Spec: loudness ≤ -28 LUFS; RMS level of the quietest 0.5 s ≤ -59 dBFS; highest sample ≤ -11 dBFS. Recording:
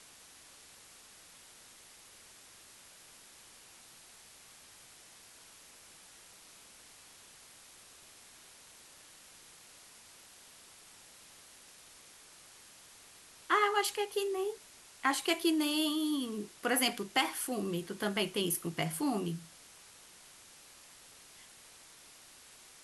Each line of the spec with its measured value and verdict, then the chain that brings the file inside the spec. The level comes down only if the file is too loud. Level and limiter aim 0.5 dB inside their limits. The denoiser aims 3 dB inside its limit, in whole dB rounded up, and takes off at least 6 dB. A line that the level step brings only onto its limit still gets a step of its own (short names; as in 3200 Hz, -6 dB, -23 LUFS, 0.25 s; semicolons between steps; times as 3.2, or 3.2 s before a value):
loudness -32.5 LUFS: OK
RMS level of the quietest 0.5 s -57 dBFS: fail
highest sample -14.5 dBFS: OK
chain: denoiser 6 dB, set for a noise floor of -57 dBFS